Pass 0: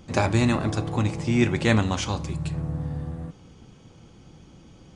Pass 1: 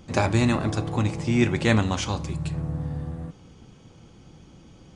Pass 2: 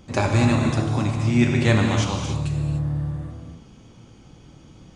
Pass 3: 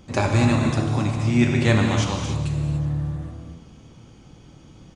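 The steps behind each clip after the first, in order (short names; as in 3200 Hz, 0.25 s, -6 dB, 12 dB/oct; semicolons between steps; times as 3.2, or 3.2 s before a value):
nothing audible
non-linear reverb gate 0.32 s flat, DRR 2 dB
feedback echo 0.407 s, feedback 38%, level -21 dB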